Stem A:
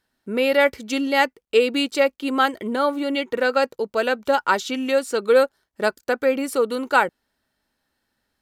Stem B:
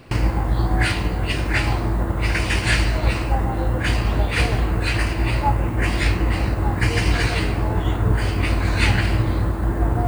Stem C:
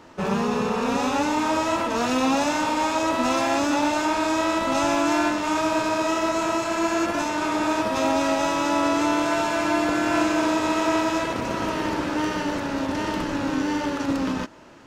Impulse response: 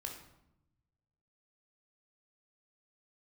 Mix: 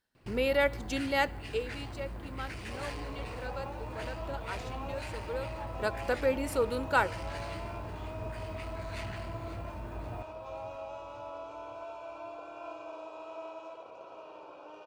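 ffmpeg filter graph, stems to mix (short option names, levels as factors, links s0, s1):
-filter_complex "[0:a]volume=1.33,afade=t=out:st=1.4:d=0.23:silence=0.237137,afade=t=in:st=5.42:d=0.62:silence=0.223872,asplit=2[s0][s1];[s1]volume=0.251[s2];[1:a]asoftclip=type=tanh:threshold=0.133,adelay=150,volume=0.126,asplit=2[s3][s4];[s4]volume=0.211[s5];[2:a]asplit=3[s6][s7][s8];[s6]bandpass=f=730:t=q:w=8,volume=1[s9];[s7]bandpass=f=1090:t=q:w=8,volume=0.501[s10];[s8]bandpass=f=2440:t=q:w=8,volume=0.355[s11];[s9][s10][s11]amix=inputs=3:normalize=0,equalizer=f=2000:w=1.1:g=-6,aecho=1:1:2.1:0.62,adelay=2500,volume=0.376[s12];[3:a]atrim=start_sample=2205[s13];[s2][s13]afir=irnorm=-1:irlink=0[s14];[s5]aecho=0:1:536|1072|1608|2144|2680|3216|3752|4288:1|0.55|0.303|0.166|0.0915|0.0503|0.0277|0.0152[s15];[s0][s3][s12][s14][s15]amix=inputs=5:normalize=0"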